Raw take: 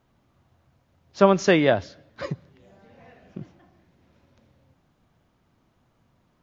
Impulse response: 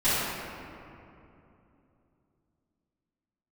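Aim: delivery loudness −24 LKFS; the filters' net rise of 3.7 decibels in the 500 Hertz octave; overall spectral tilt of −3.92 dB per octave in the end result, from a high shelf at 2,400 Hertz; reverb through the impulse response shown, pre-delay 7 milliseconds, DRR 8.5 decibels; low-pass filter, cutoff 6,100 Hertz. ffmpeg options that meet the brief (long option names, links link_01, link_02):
-filter_complex "[0:a]lowpass=6100,equalizer=frequency=500:width_type=o:gain=5,highshelf=frequency=2400:gain=-4.5,asplit=2[link_01][link_02];[1:a]atrim=start_sample=2205,adelay=7[link_03];[link_02][link_03]afir=irnorm=-1:irlink=0,volume=-24dB[link_04];[link_01][link_04]amix=inputs=2:normalize=0,volume=-5dB"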